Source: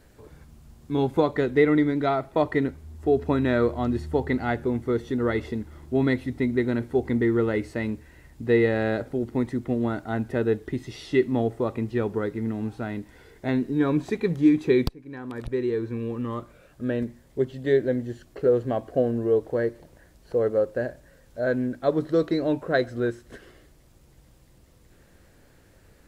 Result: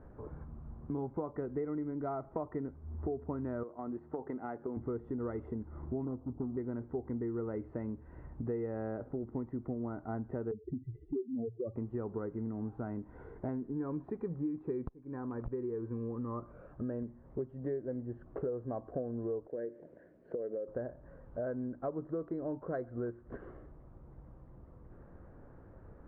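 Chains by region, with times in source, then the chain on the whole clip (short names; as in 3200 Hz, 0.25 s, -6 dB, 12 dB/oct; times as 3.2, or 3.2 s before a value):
3.63–4.77 HPF 240 Hz + gate -33 dBFS, range -7 dB + compressor 2.5:1, threshold -31 dBFS
6.05–6.57 switching dead time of 0.26 ms + LPF 1000 Hz 24 dB/oct
10.51–11.76 spectral contrast raised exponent 3.8 + LPF 1300 Hz 24 dB/oct
19.47–20.68 HPF 260 Hz + compressor 4:1, threshold -26 dBFS + band shelf 1000 Hz -13.5 dB 1 oct
whole clip: Chebyshev low-pass 1200 Hz, order 3; compressor 5:1, threshold -39 dBFS; gain +2.5 dB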